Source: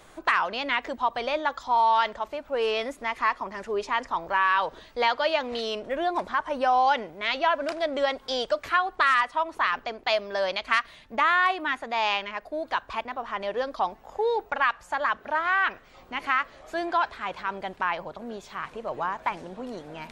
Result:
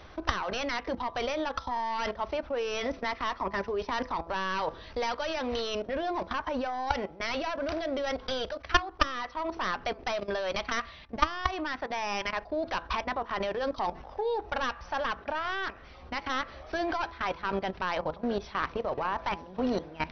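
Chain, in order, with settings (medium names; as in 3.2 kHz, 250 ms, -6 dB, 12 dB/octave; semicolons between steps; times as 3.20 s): tracing distortion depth 0.27 ms; brick-wall FIR low-pass 6.1 kHz; level held to a coarse grid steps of 19 dB; de-hum 167.1 Hz, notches 8; on a send at -17 dB: reverberation RT60 0.15 s, pre-delay 3 ms; on the sum: gain riding within 5 dB 0.5 s; peaking EQ 67 Hz +13.5 dB 1 oct; trim +6 dB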